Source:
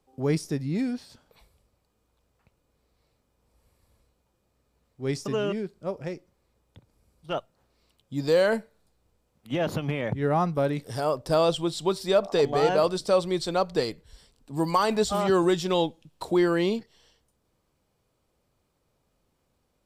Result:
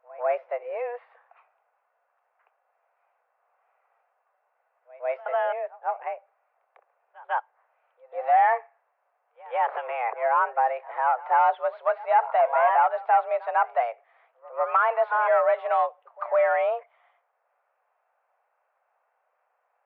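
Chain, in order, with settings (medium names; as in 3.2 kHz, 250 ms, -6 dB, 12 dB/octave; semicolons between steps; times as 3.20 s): overdrive pedal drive 14 dB, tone 1.2 kHz, clips at -9.5 dBFS; mistuned SSB +240 Hz 280–2200 Hz; pre-echo 149 ms -21 dB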